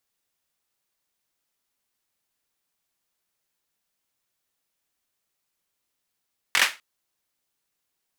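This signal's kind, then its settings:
synth clap length 0.25 s, apart 22 ms, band 2,000 Hz, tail 0.25 s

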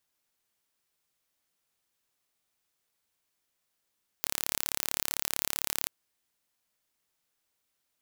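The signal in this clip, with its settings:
impulse train 35.6 per second, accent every 0, −2.5 dBFS 1.64 s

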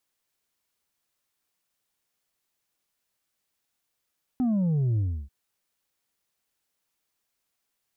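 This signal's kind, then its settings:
bass drop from 260 Hz, over 0.89 s, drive 3.5 dB, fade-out 0.31 s, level −22 dB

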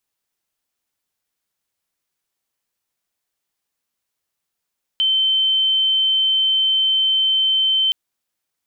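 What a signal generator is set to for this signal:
tone sine 3,090 Hz −14 dBFS 2.92 s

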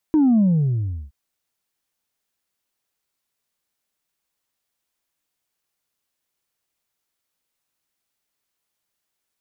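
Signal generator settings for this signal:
bass drop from 320 Hz, over 0.97 s, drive 1 dB, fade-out 0.72 s, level −13 dB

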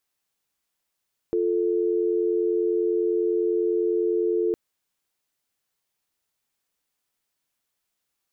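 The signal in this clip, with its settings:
call progress tone dial tone, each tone −23 dBFS 3.21 s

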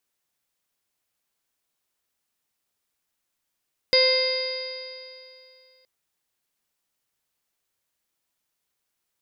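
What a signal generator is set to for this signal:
stiff-string partials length 1.92 s, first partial 516 Hz, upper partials −17.5/−19.5/−5/−16.5/−18/−10/−13.5/1 dB, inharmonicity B 0.0012, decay 2.59 s, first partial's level −18 dB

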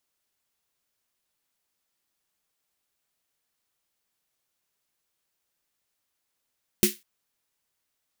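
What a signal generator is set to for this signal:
synth snare length 0.20 s, tones 210 Hz, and 360 Hz, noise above 1,900 Hz, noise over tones −1.5 dB, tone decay 0.16 s, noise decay 0.24 s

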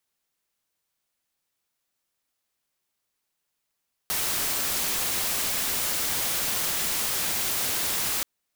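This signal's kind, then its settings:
noise white, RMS −27 dBFS 4.13 s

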